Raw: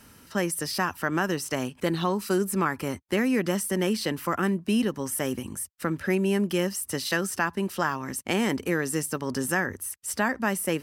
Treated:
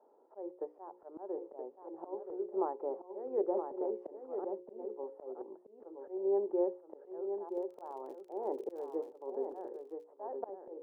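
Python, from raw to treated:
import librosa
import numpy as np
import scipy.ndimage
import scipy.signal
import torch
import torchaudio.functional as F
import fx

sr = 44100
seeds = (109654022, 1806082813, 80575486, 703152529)

p1 = scipy.signal.sosfilt(scipy.signal.ellip(3, 1.0, 70, [370.0, 860.0], 'bandpass', fs=sr, output='sos'), x)
p2 = fx.hum_notches(p1, sr, base_hz=60, count=9)
p3 = fx.auto_swell(p2, sr, attack_ms=265.0)
p4 = fx.dmg_crackle(p3, sr, seeds[0], per_s=fx.line((7.45, 32.0), (9.06, 80.0)), level_db=-50.0, at=(7.45, 9.06), fade=0.02)
p5 = p4 + fx.echo_single(p4, sr, ms=974, db=-7.0, dry=0)
p6 = fx.band_squash(p5, sr, depth_pct=100, at=(3.57, 4.07))
y = p6 * 10.0 ** (-1.0 / 20.0)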